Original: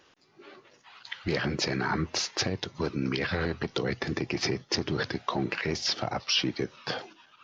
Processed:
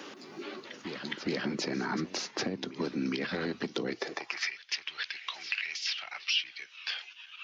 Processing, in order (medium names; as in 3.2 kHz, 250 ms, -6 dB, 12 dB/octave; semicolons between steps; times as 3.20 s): reverse echo 414 ms -17.5 dB; high-pass sweep 230 Hz -> 2.6 kHz, 3.85–4.54 s; three bands compressed up and down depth 70%; trim -6 dB